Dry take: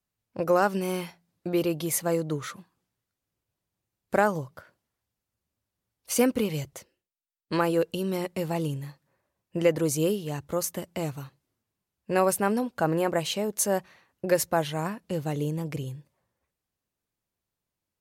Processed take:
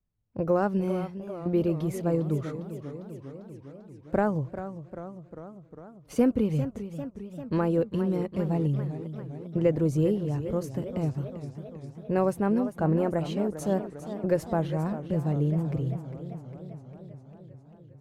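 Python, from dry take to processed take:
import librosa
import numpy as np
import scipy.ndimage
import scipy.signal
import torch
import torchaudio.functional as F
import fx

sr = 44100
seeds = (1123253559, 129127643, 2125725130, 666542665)

y = fx.tilt_eq(x, sr, slope=-4.0)
y = fx.echo_warbled(y, sr, ms=399, feedback_pct=68, rate_hz=2.8, cents=155, wet_db=-11.5)
y = y * 10.0 ** (-6.0 / 20.0)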